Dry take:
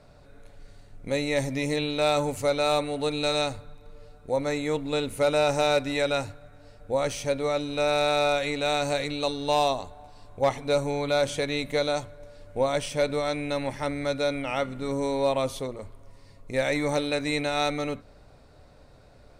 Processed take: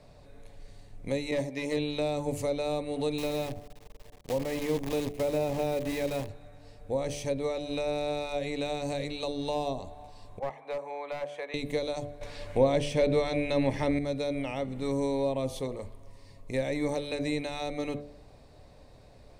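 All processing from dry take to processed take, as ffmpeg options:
-filter_complex "[0:a]asettb=1/sr,asplit=3[a][b][c];[a]atrim=end=1.314[d];[b]atrim=start=1.31:end=1.77,asetpts=PTS-STARTPTS,afade=t=in:d=0.004:c=qsin,afade=t=out:st=0.456:d=0.004:c=qsin,agate=range=-33dB:threshold=-22dB:ratio=3:release=100:detection=peak,highshelf=f=5.9k:g=7,asplit=2[e][f];[f]highpass=f=720:p=1,volume=20dB,asoftclip=type=tanh:threshold=-14dB[g];[e][g]amix=inputs=2:normalize=0,lowpass=f=2.1k:p=1,volume=-6dB[h];[c]atrim=start=1.766[i];[d][h]acrossfade=d=0.004:c1=hsin:c2=qsin[j];[j][i]acrossfade=d=0.004:c1=qsin:c2=hsin,asettb=1/sr,asplit=3[k][l][m];[k]atrim=end=3.184[n];[l]atrim=start=3.18:end=6.29,asetpts=PTS-STARTPTS,afade=t=in:d=0.004:c=qsin,afade=t=out:st=3.106:d=0.004:c=qsin,lowpass=3k,acrusher=bits=6:dc=4:mix=0:aa=0.000001[o];[m]atrim=start=6.286[p];[n][o]acrossfade=d=0.004:c1=hsin:c2=qsin[q];[q][p]acrossfade=d=0.004:c1=qsin:c2=hsin,asettb=1/sr,asplit=3[r][s][t];[r]atrim=end=10.394[u];[s]atrim=start=10.39:end=11.54,asetpts=PTS-STARTPTS,afade=t=in:d=0.004:c=qsin,afade=t=out:st=1.146:d=0.004:c=qsin,highpass=270,acrossover=split=580 2100:gain=0.0891 1 0.0794[v][w][x];[v][w][x]amix=inputs=3:normalize=0,aeval=exprs='clip(val(0),-1,0.0447)':c=same[y];[t]atrim=start=11.536[z];[u][y]acrossfade=d=0.004:c1=hsin:c2=qsin[aa];[aa][z]acrossfade=d=0.004:c1=qsin:c2=hsin,asettb=1/sr,asplit=3[ab][ac][ad];[ab]atrim=end=12.214[ae];[ac]atrim=start=12.21:end=13.99,asetpts=PTS-STARTPTS,afade=t=in:d=0.004:c=qsin,afade=t=out:st=1.776:d=0.004:c=qsin,equalizer=f=2.3k:w=0.38:g=10.5,acontrast=32[af];[ad]atrim=start=13.986[ag];[ae][af]acrossfade=d=0.004:c1=hsin:c2=qsin[ah];[ah][ag]acrossfade=d=0.004:c1=qsin:c2=hsin,equalizer=f=1.4k:t=o:w=0.22:g=-13,bandreject=f=72.76:t=h:w=4,bandreject=f=145.52:t=h:w=4,bandreject=f=218.28:t=h:w=4,bandreject=f=291.04:t=h:w=4,bandreject=f=363.8:t=h:w=4,bandreject=f=436.56:t=h:w=4,bandreject=f=509.32:t=h:w=4,bandreject=f=582.08:t=h:w=4,bandreject=f=654.84:t=h:w=4,bandreject=f=727.6:t=h:w=4,bandreject=f=800.36:t=h:w=4,acrossover=split=490[ai][aj];[aj]acompressor=threshold=-36dB:ratio=6[ak];[ai][ak]amix=inputs=2:normalize=0"

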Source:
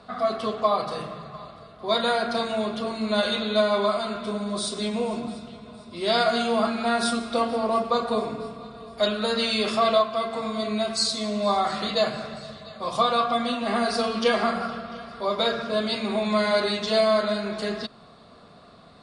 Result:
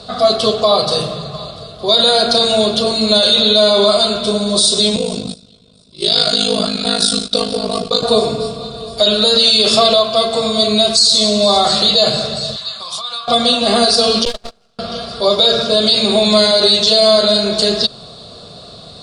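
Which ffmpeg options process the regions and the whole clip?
-filter_complex "[0:a]asettb=1/sr,asplit=3[a][b][c];[a]atrim=end=4.964[d];[b]atrim=start=4.96:end=8.03,asetpts=PTS-STARTPTS,afade=t=in:d=0.004:c=qsin,afade=t=out:st=3.066:d=0.004:c=qsin,agate=range=-15dB:threshold=-34dB:ratio=16:release=100:detection=peak,equalizer=f=780:w=1.1:g=-8.5,aeval=exprs='val(0)*sin(2*PI*26*n/s)':c=same[e];[c]atrim=start=8.026[f];[d][e]acrossfade=d=0.004:c1=hsin:c2=qsin[g];[g][f]acrossfade=d=0.004:c1=qsin:c2=hsin,asettb=1/sr,asplit=3[h][i][j];[h]atrim=end=12.564[k];[i]atrim=start=12.56:end=13.28,asetpts=PTS-STARTPTS,afade=t=in:d=0.004:c=qsin,afade=t=out:st=0.716:d=0.004:c=qsin,lowshelf=f=780:t=q:w=1.5:g=-13.5,acompressor=threshold=-37dB:ratio=5:attack=3.2:release=140:knee=1:detection=peak[l];[j]atrim=start=13.276[m];[k][l]acrossfade=d=0.004:c1=hsin:c2=qsin[n];[n][m]acrossfade=d=0.004:c1=qsin:c2=hsin,asettb=1/sr,asplit=3[o][p][q];[o]atrim=end=14.254[r];[p]atrim=start=14.25:end=14.79,asetpts=PTS-STARTPTS,afade=t=in:d=0.004:c=qsin,afade=t=out:st=0.536:d=0.004:c=qsin,agate=range=-37dB:threshold=-20dB:ratio=16:release=100:detection=peak,acompressor=threshold=-30dB:ratio=2:attack=3.2:release=140:knee=1:detection=peak,aeval=exprs='max(val(0),0)':c=same[s];[q]atrim=start=14.786[t];[r][s]acrossfade=d=0.004:c1=hsin:c2=qsin[u];[u][t]acrossfade=d=0.004:c1=qsin:c2=hsin,equalizer=f=125:t=o:w=1:g=3,equalizer=f=250:t=o:w=1:g=-7,equalizer=f=500:t=o:w=1:g=3,equalizer=f=1k:t=o:w=1:g=-7,equalizer=f=2k:t=o:w=1:g=-11,equalizer=f=4k:t=o:w=1:g=10,equalizer=f=8k:t=o:w=1:g=6,alimiter=level_in=16dB:limit=-1dB:release=50:level=0:latency=1,volume=-1dB"

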